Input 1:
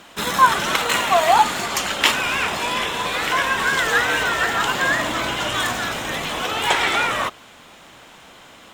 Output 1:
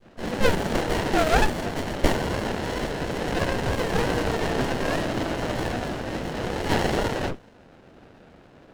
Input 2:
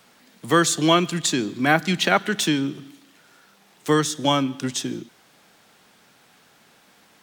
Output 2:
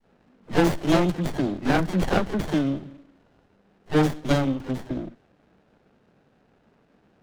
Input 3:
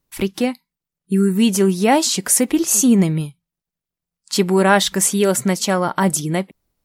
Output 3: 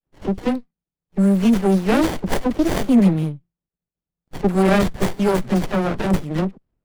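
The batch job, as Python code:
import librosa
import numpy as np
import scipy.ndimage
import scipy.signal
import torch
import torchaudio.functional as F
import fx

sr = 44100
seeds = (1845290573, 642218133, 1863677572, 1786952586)

y = fx.dispersion(x, sr, late='lows', ms=69.0, hz=700.0)
y = fx.env_lowpass(y, sr, base_hz=1500.0, full_db=-12.5)
y = fx.running_max(y, sr, window=33)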